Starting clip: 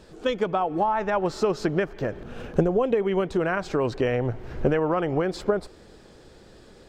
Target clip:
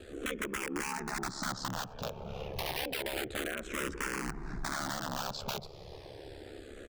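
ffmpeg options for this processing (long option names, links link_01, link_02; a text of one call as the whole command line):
ffmpeg -i in.wav -filter_complex "[0:a]acrossover=split=1200[link_01][link_02];[link_01]aeval=exprs='(mod(11.2*val(0)+1,2)-1)/11.2':channel_layout=same[link_03];[link_03][link_02]amix=inputs=2:normalize=0,acompressor=threshold=-35dB:ratio=3,asplit=2[link_04][link_05];[link_05]alimiter=level_in=10dB:limit=-24dB:level=0:latency=1,volume=-10dB,volume=1.5dB[link_06];[link_04][link_06]amix=inputs=2:normalize=0,aeval=exprs='val(0)*sin(2*PI*35*n/s)':channel_layout=same,bandreject=frequency=50:width_type=h:width=6,bandreject=frequency=100:width_type=h:width=6,bandreject=frequency=150:width_type=h:width=6,asplit=2[link_07][link_08];[link_08]adelay=1283,volume=-17dB,highshelf=frequency=4000:gain=-28.9[link_09];[link_07][link_09]amix=inputs=2:normalize=0,asplit=2[link_10][link_11];[link_11]afreqshift=-0.3[link_12];[link_10][link_12]amix=inputs=2:normalize=1" out.wav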